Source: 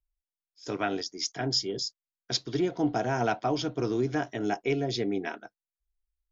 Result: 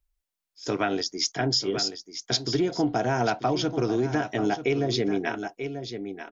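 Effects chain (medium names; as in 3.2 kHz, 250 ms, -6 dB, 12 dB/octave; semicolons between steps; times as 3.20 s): delay 937 ms -12 dB; compression 3:1, threshold -29 dBFS, peak gain reduction 6.5 dB; trim +7 dB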